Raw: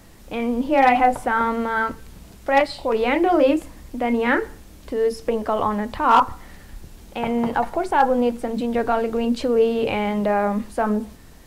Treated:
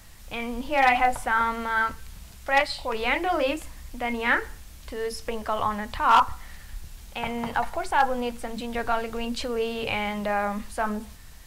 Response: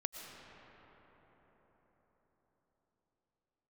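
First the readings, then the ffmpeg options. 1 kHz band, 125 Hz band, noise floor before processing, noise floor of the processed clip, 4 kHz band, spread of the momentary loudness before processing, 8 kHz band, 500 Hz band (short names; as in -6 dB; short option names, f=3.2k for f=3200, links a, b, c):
-4.0 dB, -5.0 dB, -45 dBFS, -45 dBFS, +1.5 dB, 10 LU, +2.0 dB, -9.0 dB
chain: -af "equalizer=f=330:w=0.55:g=-14.5,volume=2dB"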